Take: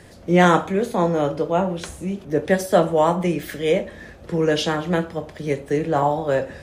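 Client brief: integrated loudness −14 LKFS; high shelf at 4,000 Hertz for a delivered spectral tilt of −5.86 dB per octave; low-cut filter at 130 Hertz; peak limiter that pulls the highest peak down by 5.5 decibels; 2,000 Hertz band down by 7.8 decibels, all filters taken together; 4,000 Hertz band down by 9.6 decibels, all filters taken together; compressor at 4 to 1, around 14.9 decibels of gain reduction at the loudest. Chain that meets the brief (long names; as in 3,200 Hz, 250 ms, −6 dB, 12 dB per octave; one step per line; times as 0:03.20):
high-pass filter 130 Hz
parametric band 2,000 Hz −8 dB
high-shelf EQ 4,000 Hz −3 dB
parametric band 4,000 Hz −8 dB
downward compressor 4 to 1, threshold −30 dBFS
level +21 dB
brickwall limiter −3.5 dBFS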